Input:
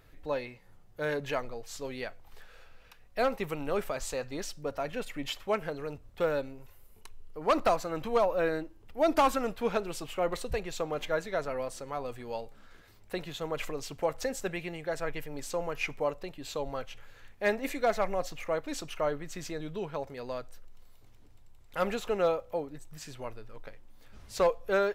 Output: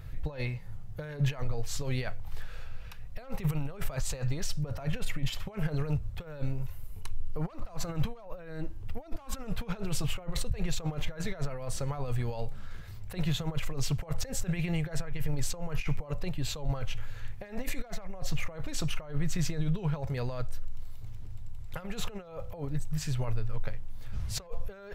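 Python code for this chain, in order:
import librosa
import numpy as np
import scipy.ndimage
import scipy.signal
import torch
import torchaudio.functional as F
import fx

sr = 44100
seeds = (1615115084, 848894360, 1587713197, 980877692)

y = fx.over_compress(x, sr, threshold_db=-39.0, ratio=-1.0)
y = fx.low_shelf_res(y, sr, hz=190.0, db=12.0, q=1.5)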